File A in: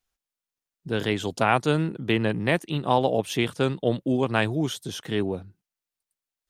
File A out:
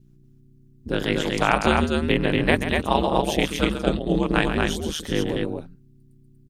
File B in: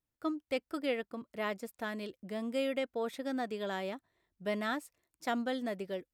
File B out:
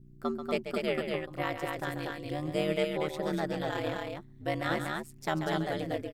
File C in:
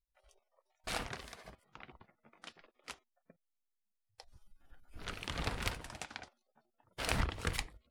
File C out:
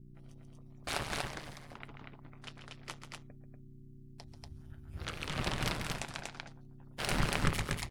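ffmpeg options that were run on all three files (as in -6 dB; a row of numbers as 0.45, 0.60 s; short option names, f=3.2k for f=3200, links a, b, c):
-af "adynamicequalizer=threshold=0.0158:dfrequency=490:dqfactor=0.89:tfrequency=490:tqfactor=0.89:attack=5:release=100:ratio=0.375:range=2:mode=cutabove:tftype=bell,aeval=exprs='val(0)+0.002*(sin(2*PI*60*n/s)+sin(2*PI*2*60*n/s)/2+sin(2*PI*3*60*n/s)/3+sin(2*PI*4*60*n/s)/4+sin(2*PI*5*60*n/s)/5)':c=same,aecho=1:1:137|239.1:0.355|0.708,aeval=exprs='val(0)*sin(2*PI*77*n/s)':c=same,volume=5dB"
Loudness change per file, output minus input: +2.5, +3.5, +3.0 LU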